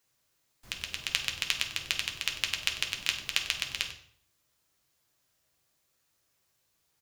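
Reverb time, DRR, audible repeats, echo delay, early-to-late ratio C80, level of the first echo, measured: 0.55 s, 1.5 dB, 1, 96 ms, 11.0 dB, -14.5 dB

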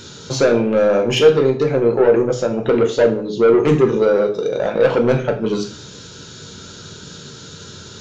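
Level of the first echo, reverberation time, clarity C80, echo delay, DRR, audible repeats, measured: no echo, 0.50 s, 15.0 dB, no echo, 3.0 dB, no echo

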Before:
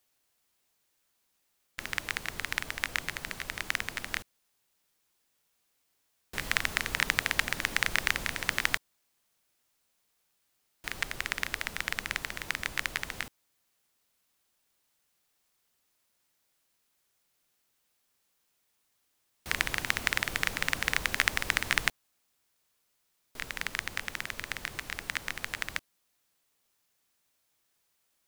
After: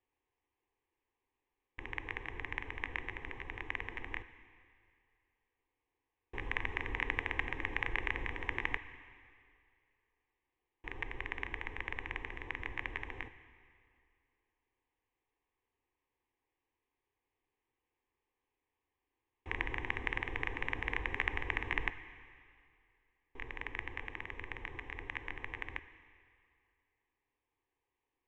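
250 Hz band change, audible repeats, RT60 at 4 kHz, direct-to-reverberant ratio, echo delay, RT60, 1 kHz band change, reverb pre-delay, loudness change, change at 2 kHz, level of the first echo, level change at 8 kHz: -3.5 dB, no echo, 2.2 s, 12.0 dB, no echo, 2.3 s, -5.5 dB, 7 ms, -8.0 dB, -7.5 dB, no echo, under -30 dB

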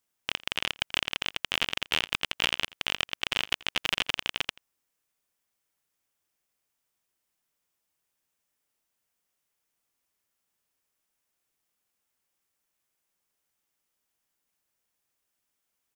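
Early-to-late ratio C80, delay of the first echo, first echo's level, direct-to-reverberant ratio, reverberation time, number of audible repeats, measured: no reverb, 84 ms, -22.0 dB, no reverb, no reverb, 1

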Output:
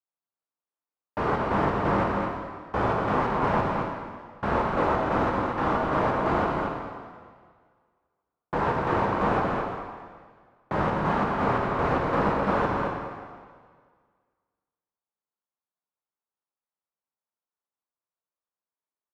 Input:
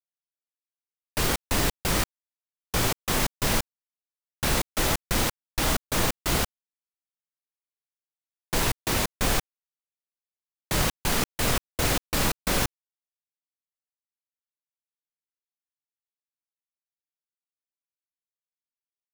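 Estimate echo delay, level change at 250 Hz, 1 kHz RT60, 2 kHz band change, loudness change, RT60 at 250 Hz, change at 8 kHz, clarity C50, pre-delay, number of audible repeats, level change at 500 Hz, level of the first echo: 220 ms, +4.0 dB, 1.7 s, -1.0 dB, 0.0 dB, 1.6 s, under -25 dB, -0.5 dB, 10 ms, 1, +6.5 dB, -5.0 dB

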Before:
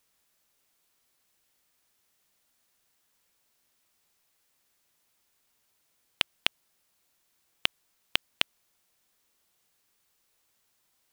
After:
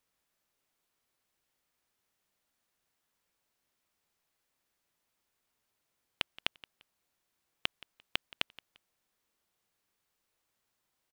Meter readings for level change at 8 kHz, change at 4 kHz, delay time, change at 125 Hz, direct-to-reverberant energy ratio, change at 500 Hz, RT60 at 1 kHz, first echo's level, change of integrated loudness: -10.0 dB, -7.5 dB, 173 ms, -4.5 dB, no reverb, -4.5 dB, no reverb, -19.5 dB, -7.5 dB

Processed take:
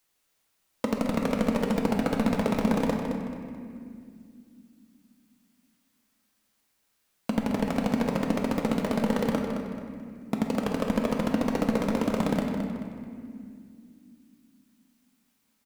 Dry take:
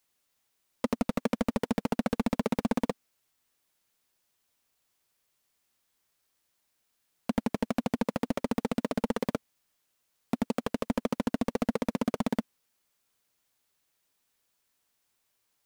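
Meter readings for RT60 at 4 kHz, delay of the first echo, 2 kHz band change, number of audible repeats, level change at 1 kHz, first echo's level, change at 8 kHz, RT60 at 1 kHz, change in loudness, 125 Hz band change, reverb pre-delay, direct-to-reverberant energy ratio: 1.6 s, 217 ms, +4.5 dB, 3, +4.0 dB, -8.0 dB, +3.0 dB, 2.1 s, +4.0 dB, +5.5 dB, 6 ms, 0.0 dB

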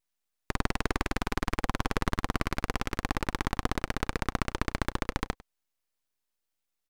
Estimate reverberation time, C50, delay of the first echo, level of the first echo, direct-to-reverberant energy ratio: no reverb, no reverb, 100 ms, -21.0 dB, no reverb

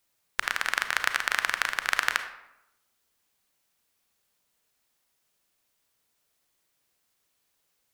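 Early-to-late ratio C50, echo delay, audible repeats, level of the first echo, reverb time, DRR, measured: 10.0 dB, no echo, no echo, no echo, 0.85 s, 8.0 dB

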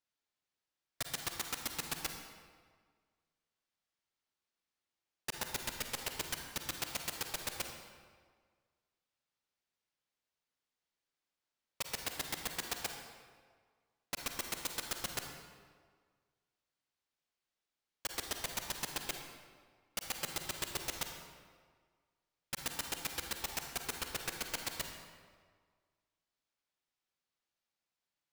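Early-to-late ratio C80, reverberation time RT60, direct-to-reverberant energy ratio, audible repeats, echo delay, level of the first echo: 6.0 dB, 1.7 s, 4.0 dB, no echo, no echo, no echo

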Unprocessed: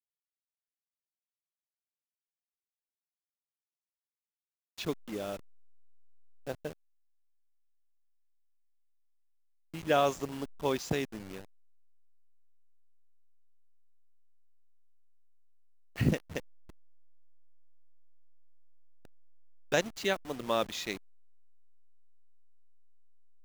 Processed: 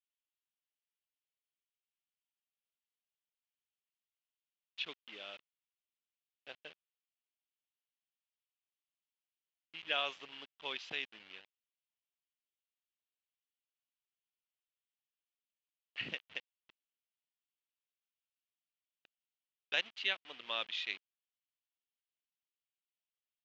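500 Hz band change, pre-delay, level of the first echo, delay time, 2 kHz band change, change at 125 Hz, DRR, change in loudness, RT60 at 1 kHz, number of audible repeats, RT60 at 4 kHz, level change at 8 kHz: -17.0 dB, no reverb, no echo, no echo, -1.0 dB, -28.5 dB, no reverb, -6.0 dB, no reverb, no echo, no reverb, -18.5 dB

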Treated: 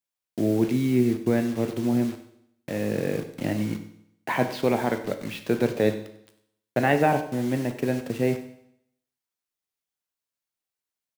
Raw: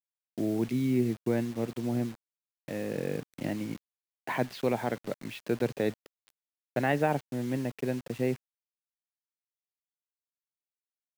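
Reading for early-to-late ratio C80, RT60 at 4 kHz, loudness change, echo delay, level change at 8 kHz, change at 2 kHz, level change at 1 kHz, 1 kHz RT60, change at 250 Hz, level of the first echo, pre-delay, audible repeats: 12.5 dB, 0.70 s, +6.0 dB, 96 ms, +6.5 dB, +6.5 dB, +7.0 dB, 0.70 s, +6.5 dB, -17.5 dB, 9 ms, 1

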